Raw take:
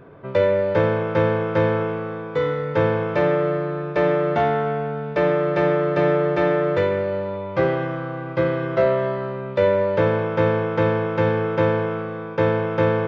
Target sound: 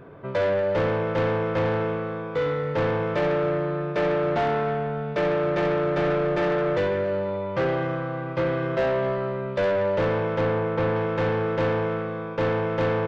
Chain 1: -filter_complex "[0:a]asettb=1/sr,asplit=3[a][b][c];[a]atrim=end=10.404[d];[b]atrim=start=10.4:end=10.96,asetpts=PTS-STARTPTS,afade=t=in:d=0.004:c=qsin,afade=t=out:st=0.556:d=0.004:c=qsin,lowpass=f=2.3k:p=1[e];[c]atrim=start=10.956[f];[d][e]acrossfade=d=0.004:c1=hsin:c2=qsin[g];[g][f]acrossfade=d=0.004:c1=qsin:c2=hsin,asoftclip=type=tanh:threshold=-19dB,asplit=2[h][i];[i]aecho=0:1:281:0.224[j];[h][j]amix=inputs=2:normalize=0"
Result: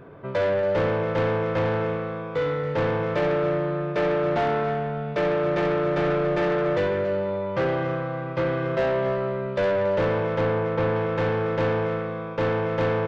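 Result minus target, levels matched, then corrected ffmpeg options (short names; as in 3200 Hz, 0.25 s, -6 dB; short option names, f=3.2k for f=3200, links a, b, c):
echo-to-direct +7.5 dB
-filter_complex "[0:a]asettb=1/sr,asplit=3[a][b][c];[a]atrim=end=10.404[d];[b]atrim=start=10.4:end=10.96,asetpts=PTS-STARTPTS,afade=t=in:d=0.004:c=qsin,afade=t=out:st=0.556:d=0.004:c=qsin,lowpass=f=2.3k:p=1[e];[c]atrim=start=10.956[f];[d][e]acrossfade=d=0.004:c1=hsin:c2=qsin[g];[g][f]acrossfade=d=0.004:c1=qsin:c2=hsin,asoftclip=type=tanh:threshold=-19dB,asplit=2[h][i];[i]aecho=0:1:281:0.0944[j];[h][j]amix=inputs=2:normalize=0"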